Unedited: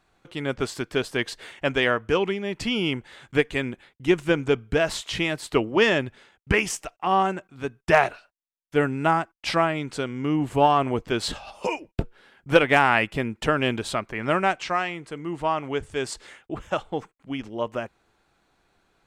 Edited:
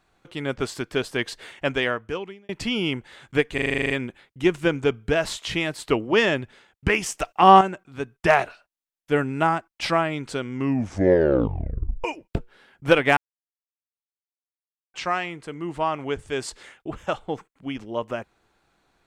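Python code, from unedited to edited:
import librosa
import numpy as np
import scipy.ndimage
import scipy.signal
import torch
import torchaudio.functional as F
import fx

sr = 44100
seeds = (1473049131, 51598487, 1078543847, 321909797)

y = fx.edit(x, sr, fx.fade_out_span(start_s=1.67, length_s=0.82),
    fx.stutter(start_s=3.54, slice_s=0.04, count=10),
    fx.clip_gain(start_s=6.84, length_s=0.41, db=9.0),
    fx.tape_stop(start_s=10.18, length_s=1.5),
    fx.silence(start_s=12.81, length_s=1.77), tone=tone)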